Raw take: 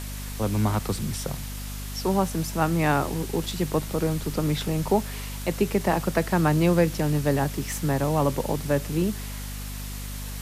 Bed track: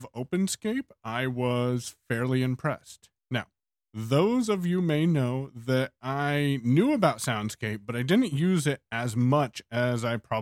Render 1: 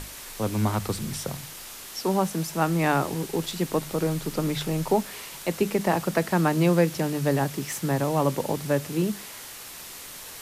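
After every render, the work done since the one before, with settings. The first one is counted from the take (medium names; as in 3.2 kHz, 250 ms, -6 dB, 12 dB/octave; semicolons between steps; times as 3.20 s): hum notches 50/100/150/200/250 Hz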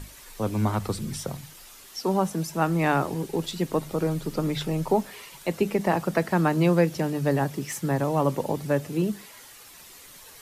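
noise reduction 9 dB, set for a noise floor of -41 dBFS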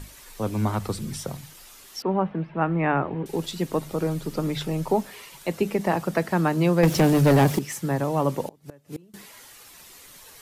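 2.02–3.26 s: inverse Chebyshev low-pass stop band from 6.4 kHz, stop band 50 dB; 6.83–7.59 s: waveshaping leveller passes 3; 8.48–9.14 s: inverted gate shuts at -22 dBFS, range -28 dB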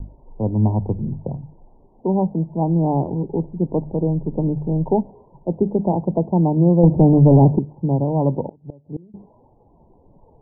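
steep low-pass 960 Hz 96 dB/octave; bass shelf 350 Hz +9.5 dB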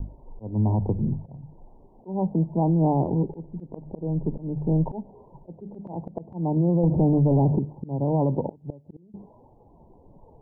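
slow attack 332 ms; peak limiter -14.5 dBFS, peak gain reduction 9.5 dB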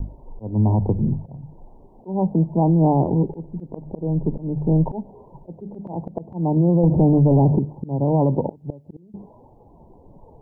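trim +4.5 dB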